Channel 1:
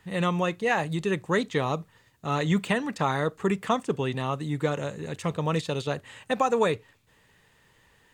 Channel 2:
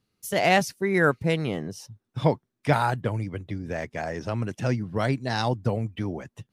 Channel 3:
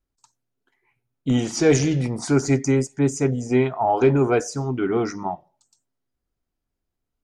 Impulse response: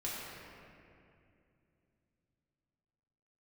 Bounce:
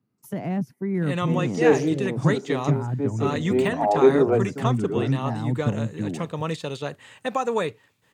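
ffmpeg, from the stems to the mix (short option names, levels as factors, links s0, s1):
-filter_complex "[0:a]deesser=0.65,adelay=950,volume=0.891[s0];[1:a]equalizer=f=125:t=o:w=1:g=11,equalizer=f=250:t=o:w=1:g=10,equalizer=f=1000:t=o:w=1:g=6,equalizer=f=4000:t=o:w=1:g=-9,equalizer=f=8000:t=o:w=1:g=-6,acrossover=split=350[s1][s2];[s2]acompressor=threshold=0.0355:ratio=5[s3];[s1][s3]amix=inputs=2:normalize=0,volume=0.422,asplit=2[s4][s5];[2:a]equalizer=f=460:w=0.56:g=14,volume=0.266[s6];[s5]apad=whole_len=319218[s7];[s6][s7]sidechaincompress=threshold=0.0501:ratio=8:attack=16:release=616[s8];[s0][s4][s8]amix=inputs=3:normalize=0,highpass=110"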